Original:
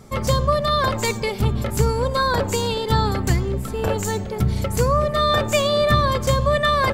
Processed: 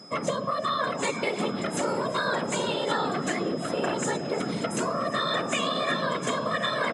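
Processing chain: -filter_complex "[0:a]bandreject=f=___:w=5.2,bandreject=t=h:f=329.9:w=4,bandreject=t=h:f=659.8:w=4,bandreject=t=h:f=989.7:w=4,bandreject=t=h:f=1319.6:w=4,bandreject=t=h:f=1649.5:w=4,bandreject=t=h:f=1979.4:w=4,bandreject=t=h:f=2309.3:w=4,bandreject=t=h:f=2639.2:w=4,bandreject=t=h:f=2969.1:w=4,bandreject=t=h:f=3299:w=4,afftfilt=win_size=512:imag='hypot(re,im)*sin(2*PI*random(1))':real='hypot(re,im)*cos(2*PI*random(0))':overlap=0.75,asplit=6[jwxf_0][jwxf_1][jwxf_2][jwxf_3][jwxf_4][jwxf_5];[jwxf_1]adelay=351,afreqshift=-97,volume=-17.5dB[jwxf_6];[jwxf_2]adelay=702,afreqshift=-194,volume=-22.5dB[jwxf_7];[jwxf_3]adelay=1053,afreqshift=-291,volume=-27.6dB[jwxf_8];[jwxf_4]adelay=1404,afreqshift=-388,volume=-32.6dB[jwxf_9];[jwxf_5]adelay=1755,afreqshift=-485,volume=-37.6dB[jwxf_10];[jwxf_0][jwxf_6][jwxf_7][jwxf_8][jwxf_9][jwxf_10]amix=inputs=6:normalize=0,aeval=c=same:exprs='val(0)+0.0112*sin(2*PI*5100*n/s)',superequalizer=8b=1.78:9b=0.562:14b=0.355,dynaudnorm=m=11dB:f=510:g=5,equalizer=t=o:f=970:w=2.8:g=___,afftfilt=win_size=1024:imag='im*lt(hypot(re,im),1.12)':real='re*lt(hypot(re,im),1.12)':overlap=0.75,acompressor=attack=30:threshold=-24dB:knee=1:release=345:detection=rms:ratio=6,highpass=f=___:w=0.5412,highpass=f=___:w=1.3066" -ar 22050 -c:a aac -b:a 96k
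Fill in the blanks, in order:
610, 5.5, 160, 160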